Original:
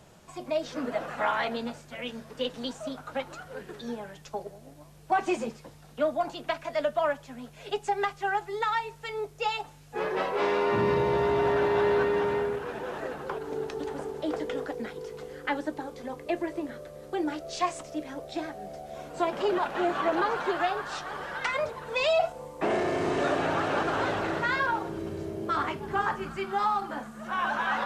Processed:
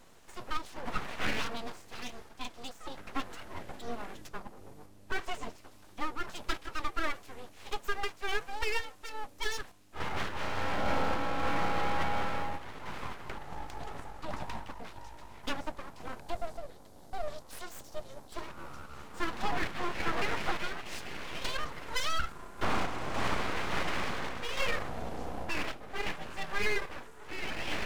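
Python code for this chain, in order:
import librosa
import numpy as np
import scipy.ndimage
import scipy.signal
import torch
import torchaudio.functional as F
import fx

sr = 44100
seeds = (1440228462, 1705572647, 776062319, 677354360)

y = fx.low_shelf(x, sr, hz=290.0, db=8.0, at=(2.97, 5.17))
y = fx.spec_box(y, sr, start_s=16.2, length_s=2.13, low_hz=460.0, high_hz=3300.0, gain_db=-13)
y = np.abs(y)
y = fx.tremolo_random(y, sr, seeds[0], hz=3.5, depth_pct=55)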